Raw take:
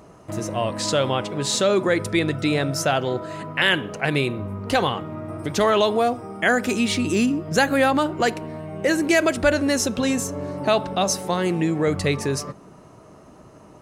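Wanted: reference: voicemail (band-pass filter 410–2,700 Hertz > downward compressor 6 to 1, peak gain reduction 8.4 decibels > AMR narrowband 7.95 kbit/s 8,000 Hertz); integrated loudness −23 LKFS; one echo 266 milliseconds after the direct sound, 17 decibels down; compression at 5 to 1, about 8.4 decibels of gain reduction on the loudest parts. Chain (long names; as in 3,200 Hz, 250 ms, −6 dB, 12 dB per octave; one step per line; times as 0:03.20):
downward compressor 5 to 1, threshold −23 dBFS
band-pass filter 410–2,700 Hz
single-tap delay 266 ms −17 dB
downward compressor 6 to 1, threshold −30 dBFS
level +13 dB
AMR narrowband 7.95 kbit/s 8,000 Hz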